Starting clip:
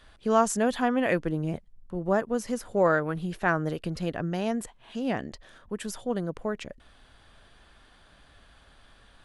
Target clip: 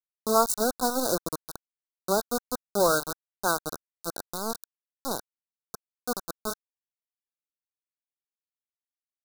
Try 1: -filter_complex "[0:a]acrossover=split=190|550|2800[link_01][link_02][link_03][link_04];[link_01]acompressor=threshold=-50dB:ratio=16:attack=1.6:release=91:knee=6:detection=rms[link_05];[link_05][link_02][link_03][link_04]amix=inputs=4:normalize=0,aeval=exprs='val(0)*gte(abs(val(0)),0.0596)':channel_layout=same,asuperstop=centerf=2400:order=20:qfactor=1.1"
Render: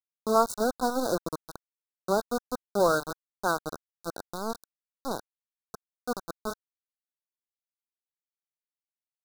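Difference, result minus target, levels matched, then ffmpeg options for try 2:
8,000 Hz band −7.0 dB
-filter_complex "[0:a]acrossover=split=190|550|2800[link_01][link_02][link_03][link_04];[link_01]acompressor=threshold=-50dB:ratio=16:attack=1.6:release=91:knee=6:detection=rms[link_05];[link_05][link_02][link_03][link_04]amix=inputs=4:normalize=0,aeval=exprs='val(0)*gte(abs(val(0)),0.0596)':channel_layout=same,asuperstop=centerf=2400:order=20:qfactor=1.1,highshelf=frequency=4900:gain=11.5"

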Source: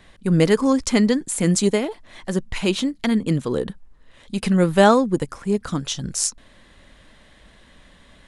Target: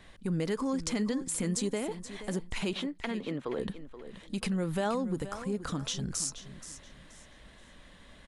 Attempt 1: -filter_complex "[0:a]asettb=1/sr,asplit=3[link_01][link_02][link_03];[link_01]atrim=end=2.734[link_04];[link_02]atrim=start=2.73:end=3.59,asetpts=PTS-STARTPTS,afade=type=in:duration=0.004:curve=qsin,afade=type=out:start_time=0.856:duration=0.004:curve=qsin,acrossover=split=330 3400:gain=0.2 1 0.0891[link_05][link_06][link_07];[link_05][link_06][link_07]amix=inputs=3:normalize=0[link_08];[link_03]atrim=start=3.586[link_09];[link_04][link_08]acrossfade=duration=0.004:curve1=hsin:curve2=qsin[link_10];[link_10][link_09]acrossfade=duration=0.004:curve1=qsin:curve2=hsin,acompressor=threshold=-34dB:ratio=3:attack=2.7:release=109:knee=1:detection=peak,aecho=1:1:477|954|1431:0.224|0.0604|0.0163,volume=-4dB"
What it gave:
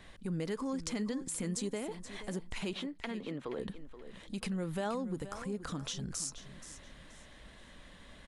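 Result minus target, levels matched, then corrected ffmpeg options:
downward compressor: peak gain reduction +5 dB
-filter_complex "[0:a]asettb=1/sr,asplit=3[link_01][link_02][link_03];[link_01]atrim=end=2.734[link_04];[link_02]atrim=start=2.73:end=3.59,asetpts=PTS-STARTPTS,afade=type=in:duration=0.004:curve=qsin,afade=type=out:start_time=0.856:duration=0.004:curve=qsin,acrossover=split=330 3400:gain=0.2 1 0.0891[link_05][link_06][link_07];[link_05][link_06][link_07]amix=inputs=3:normalize=0[link_08];[link_03]atrim=start=3.586[link_09];[link_04][link_08]acrossfade=duration=0.004:curve1=hsin:curve2=qsin[link_10];[link_10][link_09]acrossfade=duration=0.004:curve1=qsin:curve2=hsin,acompressor=threshold=-26.5dB:ratio=3:attack=2.7:release=109:knee=1:detection=peak,aecho=1:1:477|954|1431:0.224|0.0604|0.0163,volume=-4dB"

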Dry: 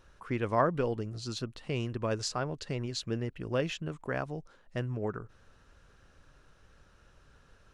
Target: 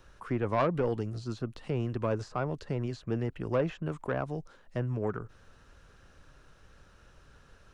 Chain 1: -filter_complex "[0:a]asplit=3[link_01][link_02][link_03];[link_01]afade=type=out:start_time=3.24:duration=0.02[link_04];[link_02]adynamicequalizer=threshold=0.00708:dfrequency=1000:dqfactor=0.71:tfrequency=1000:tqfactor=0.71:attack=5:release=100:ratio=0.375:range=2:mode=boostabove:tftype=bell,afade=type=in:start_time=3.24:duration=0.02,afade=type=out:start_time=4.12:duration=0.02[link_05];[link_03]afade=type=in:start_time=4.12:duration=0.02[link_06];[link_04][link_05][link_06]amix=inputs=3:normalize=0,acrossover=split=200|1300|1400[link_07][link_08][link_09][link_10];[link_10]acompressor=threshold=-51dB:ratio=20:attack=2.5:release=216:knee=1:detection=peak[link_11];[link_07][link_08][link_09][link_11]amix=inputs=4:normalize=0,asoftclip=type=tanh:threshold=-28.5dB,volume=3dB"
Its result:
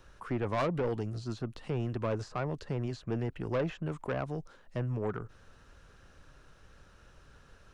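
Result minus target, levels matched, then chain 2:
soft clipping: distortion +5 dB
-filter_complex "[0:a]asplit=3[link_01][link_02][link_03];[link_01]afade=type=out:start_time=3.24:duration=0.02[link_04];[link_02]adynamicequalizer=threshold=0.00708:dfrequency=1000:dqfactor=0.71:tfrequency=1000:tqfactor=0.71:attack=5:release=100:ratio=0.375:range=2:mode=boostabove:tftype=bell,afade=type=in:start_time=3.24:duration=0.02,afade=type=out:start_time=4.12:duration=0.02[link_05];[link_03]afade=type=in:start_time=4.12:duration=0.02[link_06];[link_04][link_05][link_06]amix=inputs=3:normalize=0,acrossover=split=200|1300|1400[link_07][link_08][link_09][link_10];[link_10]acompressor=threshold=-51dB:ratio=20:attack=2.5:release=216:knee=1:detection=peak[link_11];[link_07][link_08][link_09][link_11]amix=inputs=4:normalize=0,asoftclip=type=tanh:threshold=-22.5dB,volume=3dB"

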